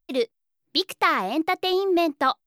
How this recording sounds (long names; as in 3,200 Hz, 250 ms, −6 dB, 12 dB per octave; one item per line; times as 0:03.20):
background noise floor −77 dBFS
spectral slope −0.5 dB per octave